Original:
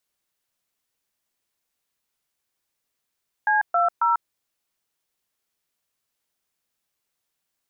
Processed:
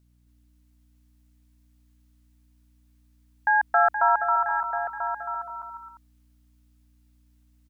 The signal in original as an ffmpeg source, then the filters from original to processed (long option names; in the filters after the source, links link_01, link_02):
-f lavfi -i "aevalsrc='0.106*clip(min(mod(t,0.272),0.144-mod(t,0.272))/0.002,0,1)*(eq(floor(t/0.272),0)*(sin(2*PI*852*mod(t,0.272))+sin(2*PI*1633*mod(t,0.272)))+eq(floor(t/0.272),1)*(sin(2*PI*697*mod(t,0.272))+sin(2*PI*1336*mod(t,0.272)))+eq(floor(t/0.272),2)*(sin(2*PI*941*mod(t,0.272))+sin(2*PI*1336*mod(t,0.272))))':duration=0.816:sample_rate=44100"
-filter_complex "[0:a]asplit=2[link_01][link_02];[link_02]aecho=0:1:989:0.355[link_03];[link_01][link_03]amix=inputs=2:normalize=0,aeval=exprs='val(0)+0.000891*(sin(2*PI*60*n/s)+sin(2*PI*2*60*n/s)/2+sin(2*PI*3*60*n/s)/3+sin(2*PI*4*60*n/s)/4+sin(2*PI*5*60*n/s)/5)':channel_layout=same,asplit=2[link_04][link_05];[link_05]aecho=0:1:270|472.5|624.4|738.3|823.7:0.631|0.398|0.251|0.158|0.1[link_06];[link_04][link_06]amix=inputs=2:normalize=0"